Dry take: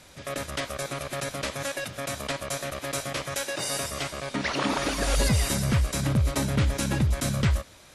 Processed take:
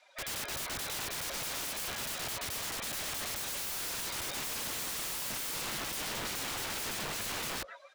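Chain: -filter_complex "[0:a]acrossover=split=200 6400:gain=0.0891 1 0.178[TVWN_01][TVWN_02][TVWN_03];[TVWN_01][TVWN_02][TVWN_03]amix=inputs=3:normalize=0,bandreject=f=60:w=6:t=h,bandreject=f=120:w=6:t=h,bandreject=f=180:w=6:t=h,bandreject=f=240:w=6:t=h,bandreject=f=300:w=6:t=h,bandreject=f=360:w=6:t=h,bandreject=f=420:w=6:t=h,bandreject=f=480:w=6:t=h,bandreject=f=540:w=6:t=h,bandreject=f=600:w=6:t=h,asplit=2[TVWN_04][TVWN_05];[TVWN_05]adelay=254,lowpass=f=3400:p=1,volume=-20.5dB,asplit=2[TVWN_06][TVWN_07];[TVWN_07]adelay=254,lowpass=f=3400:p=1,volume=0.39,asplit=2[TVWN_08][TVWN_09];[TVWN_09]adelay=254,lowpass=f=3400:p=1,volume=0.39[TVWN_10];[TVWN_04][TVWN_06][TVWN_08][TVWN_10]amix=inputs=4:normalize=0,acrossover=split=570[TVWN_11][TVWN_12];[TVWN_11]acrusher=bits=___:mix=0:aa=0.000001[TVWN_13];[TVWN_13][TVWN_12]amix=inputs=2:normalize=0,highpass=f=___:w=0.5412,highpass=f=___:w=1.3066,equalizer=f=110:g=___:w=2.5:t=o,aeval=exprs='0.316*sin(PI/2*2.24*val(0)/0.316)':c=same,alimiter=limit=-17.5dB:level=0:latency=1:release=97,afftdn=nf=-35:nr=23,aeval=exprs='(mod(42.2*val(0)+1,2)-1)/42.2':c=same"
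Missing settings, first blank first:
6, 48, 48, 14.5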